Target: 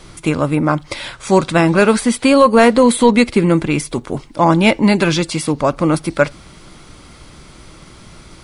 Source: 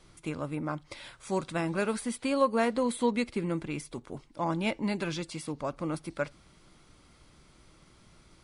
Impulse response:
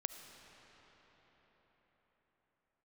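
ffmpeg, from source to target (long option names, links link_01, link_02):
-filter_complex "[0:a]asettb=1/sr,asplit=3[link_01][link_02][link_03];[link_01]atrim=end=1.054[link_04];[link_02]atrim=start=1.05:end=2.16,asetpts=PTS-STARTPTS,afade=type=in:duration=0.004:curve=qsin,afade=type=out:start_time=1.106:duration=0.004:curve=qsin,lowpass=9000[link_05];[link_03]atrim=start=2.156[link_06];[link_04][link_05]acrossfade=duration=0.004:curve1=hsin:curve2=qsin[link_07];[link_07][link_06]acrossfade=duration=0.004:curve1=qsin:curve2=hsin,apsyclip=20dB,volume=-1.5dB"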